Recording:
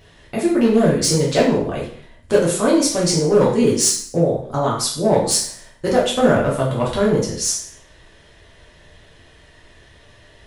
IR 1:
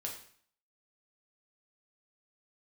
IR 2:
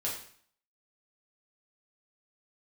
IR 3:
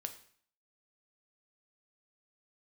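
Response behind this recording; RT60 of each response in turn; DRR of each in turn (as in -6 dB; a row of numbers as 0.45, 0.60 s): 2; 0.55, 0.55, 0.55 s; -1.5, -5.5, 6.5 dB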